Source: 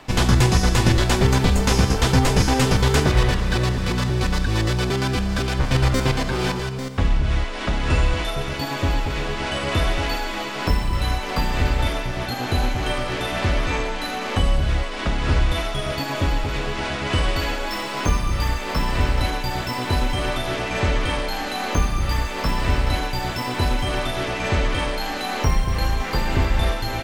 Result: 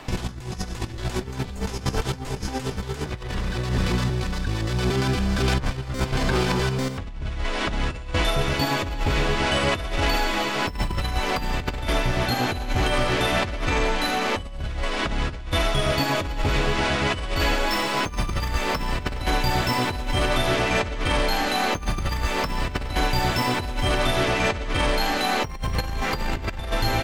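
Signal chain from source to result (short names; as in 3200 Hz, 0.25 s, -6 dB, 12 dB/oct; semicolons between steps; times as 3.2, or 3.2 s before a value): negative-ratio compressor -23 dBFS, ratio -0.5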